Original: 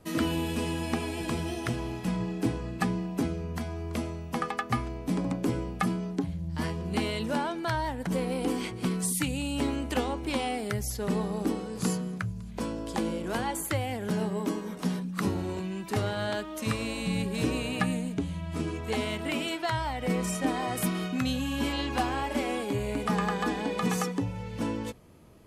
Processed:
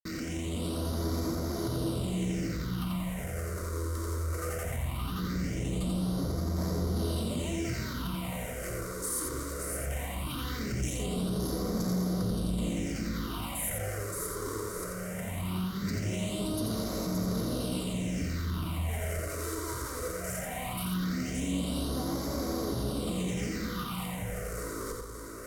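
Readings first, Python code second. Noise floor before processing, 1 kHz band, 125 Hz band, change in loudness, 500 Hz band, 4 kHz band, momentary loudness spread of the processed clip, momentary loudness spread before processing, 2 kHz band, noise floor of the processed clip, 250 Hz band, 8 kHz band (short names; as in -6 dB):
-40 dBFS, -7.5 dB, 0.0 dB, -2.5 dB, -3.5 dB, -3.0 dB, 5 LU, 4 LU, -6.0 dB, -38 dBFS, -3.0 dB, +1.0 dB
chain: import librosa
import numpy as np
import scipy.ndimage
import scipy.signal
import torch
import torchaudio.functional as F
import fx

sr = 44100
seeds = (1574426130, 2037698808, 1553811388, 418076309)

p1 = fx.over_compress(x, sr, threshold_db=-34.0, ratio=-0.5)
p2 = x + (p1 * librosa.db_to_amplitude(-1.0))
p3 = fx.schmitt(p2, sr, flips_db=-35.0)
p4 = scipy.signal.sosfilt(scipy.signal.butter(2, 12000.0, 'lowpass', fs=sr, output='sos'), p3)
p5 = fx.low_shelf(p4, sr, hz=82.0, db=10.0)
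p6 = fx.notch_comb(p5, sr, f0_hz=840.0)
p7 = fx.echo_feedback(p6, sr, ms=572, feedback_pct=41, wet_db=-5.0)
p8 = fx.phaser_stages(p7, sr, stages=6, low_hz=190.0, high_hz=2700.0, hz=0.19, feedback_pct=25)
p9 = fx.high_shelf(p8, sr, hz=7200.0, db=10.5)
p10 = p9 + 10.0 ** (-4.0 / 20.0) * np.pad(p9, (int(87 * sr / 1000.0), 0))[:len(p9)]
y = p10 * librosa.db_to_amplitude(-8.0)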